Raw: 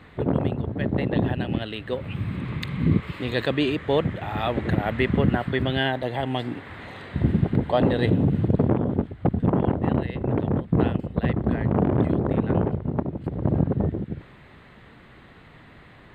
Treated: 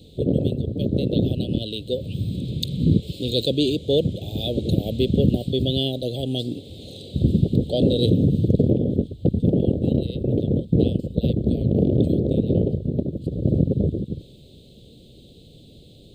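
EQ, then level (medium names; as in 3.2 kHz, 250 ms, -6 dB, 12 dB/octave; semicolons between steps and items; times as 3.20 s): elliptic band-stop 530–3600 Hz, stop band 50 dB; treble shelf 2.1 kHz +10 dB; +3.0 dB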